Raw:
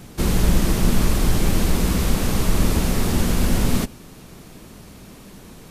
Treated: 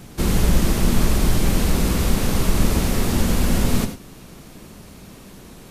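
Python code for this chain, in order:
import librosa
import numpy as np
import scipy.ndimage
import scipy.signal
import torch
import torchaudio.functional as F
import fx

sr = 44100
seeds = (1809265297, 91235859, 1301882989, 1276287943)

y = fx.rev_gated(x, sr, seeds[0], gate_ms=120, shape='rising', drr_db=8.5)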